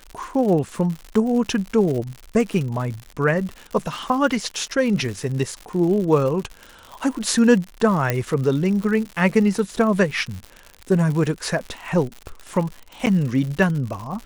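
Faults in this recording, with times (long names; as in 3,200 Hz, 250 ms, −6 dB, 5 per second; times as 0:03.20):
surface crackle 120 per second −28 dBFS
0:08.10: click −6 dBFS
0:13.06–0:13.07: drop-out 9 ms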